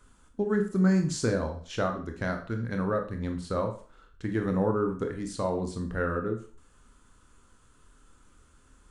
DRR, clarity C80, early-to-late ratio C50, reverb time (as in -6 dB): 4.0 dB, 14.0 dB, 9.0 dB, 0.40 s